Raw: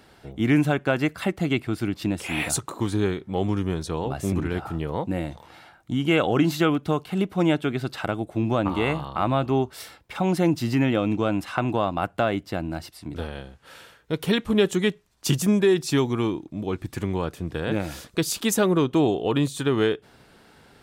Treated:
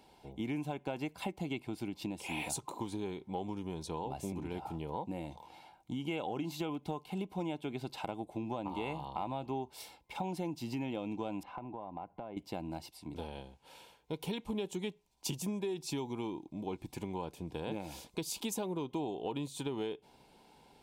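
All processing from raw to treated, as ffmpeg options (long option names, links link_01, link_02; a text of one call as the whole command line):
ffmpeg -i in.wav -filter_complex "[0:a]asettb=1/sr,asplit=3[link_01][link_02][link_03];[link_01]atrim=end=11.434[link_04];[link_02]atrim=start=11.43:end=12.37,asetpts=PTS-STARTPTS,afade=type=in:duration=0.004:curve=qsin,afade=type=out:start_time=0.936:duration=0.004:curve=qsin,lowpass=1600,acompressor=threshold=-32dB:ratio=6:attack=3.2:release=140:knee=1:detection=peak[link_05];[link_03]atrim=start=12.366[link_06];[link_04][link_05]acrossfade=duration=0.004:curve1=hsin:curve2=qsin[link_07];[link_07][link_06]acrossfade=duration=0.004:curve1=qsin:curve2=hsin,superequalizer=9b=2:10b=0.355:11b=0.316,acompressor=threshold=-25dB:ratio=6,equalizer=frequency=98:width_type=o:width=0.73:gain=-7.5,volume=-8.5dB" out.wav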